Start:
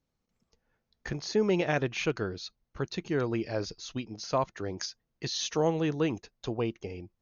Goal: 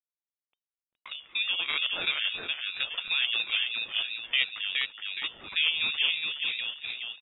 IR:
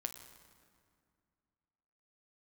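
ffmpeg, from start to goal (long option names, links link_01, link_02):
-filter_complex "[0:a]lowshelf=frequency=110:gain=-7,bandreject=frequency=60:width_type=h:width=6,bandreject=frequency=120:width_type=h:width=6,bandreject=frequency=180:width_type=h:width=6,bandreject=frequency=240:width_type=h:width=6,bandreject=frequency=300:width_type=h:width=6,bandreject=frequency=360:width_type=h:width=6,bandreject=frequency=420:width_type=h:width=6,asplit=2[link_01][link_02];[link_02]acompressor=threshold=-42dB:ratio=6,volume=2.5dB[link_03];[link_01][link_03]amix=inputs=2:normalize=0,highshelf=frequency=2000:gain=-9,aeval=exprs='val(0)*gte(abs(val(0)),0.00224)':channel_layout=same,dynaudnorm=framelen=360:gausssize=9:maxgain=9.5dB,aecho=1:1:418|836|1254|1672|2090:0.668|0.274|0.112|0.0461|0.0189,lowpass=frequency=2900:width_type=q:width=0.5098,lowpass=frequency=2900:width_type=q:width=0.6013,lowpass=frequency=2900:width_type=q:width=0.9,lowpass=frequency=2900:width_type=q:width=2.563,afreqshift=-3400,aeval=exprs='val(0)*sin(2*PI*400*n/s+400*0.4/2.9*sin(2*PI*2.9*n/s))':channel_layout=same,volume=-6dB"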